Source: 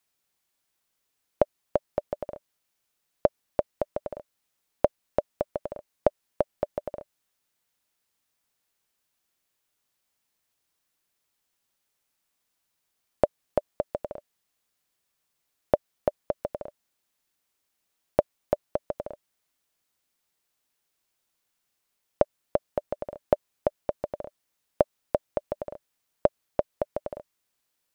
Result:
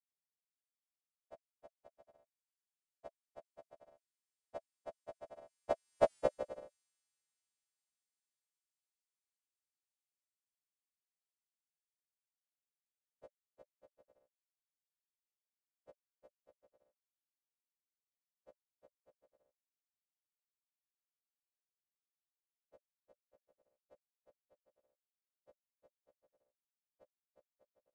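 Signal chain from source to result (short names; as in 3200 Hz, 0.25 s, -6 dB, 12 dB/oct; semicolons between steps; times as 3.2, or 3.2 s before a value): frequency quantiser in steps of 2 st; Doppler pass-by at 6.14, 20 m/s, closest 2 m; downsampling 22050 Hz; gain +2.5 dB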